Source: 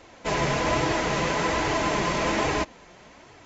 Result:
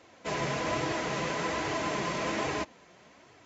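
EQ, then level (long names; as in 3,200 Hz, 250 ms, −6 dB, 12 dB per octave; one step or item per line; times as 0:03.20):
high-pass filter 91 Hz 12 dB per octave
notch filter 870 Hz, Q 19
−6.5 dB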